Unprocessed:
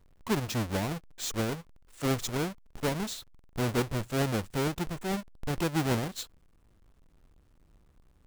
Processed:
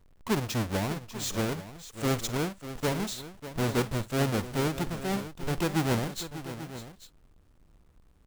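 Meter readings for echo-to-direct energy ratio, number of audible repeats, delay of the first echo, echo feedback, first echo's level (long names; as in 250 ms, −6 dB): −10.0 dB, 3, 51 ms, repeats not evenly spaced, −18.0 dB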